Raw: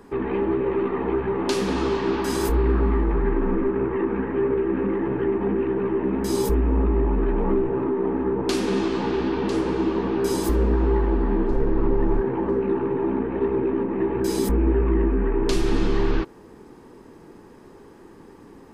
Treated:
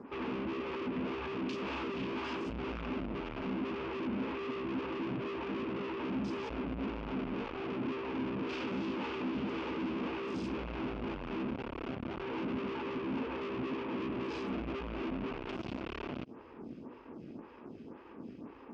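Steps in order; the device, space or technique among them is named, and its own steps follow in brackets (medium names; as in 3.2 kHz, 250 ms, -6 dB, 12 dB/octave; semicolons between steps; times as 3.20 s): vibe pedal into a guitar amplifier (lamp-driven phase shifter 1.9 Hz; valve stage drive 40 dB, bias 0.75; cabinet simulation 76–4400 Hz, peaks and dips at 240 Hz +7 dB, 410 Hz -4 dB, 770 Hz -5 dB, 1.8 kHz -6 dB, 2.6 kHz +6 dB, 4 kHz -7 dB); trim +4.5 dB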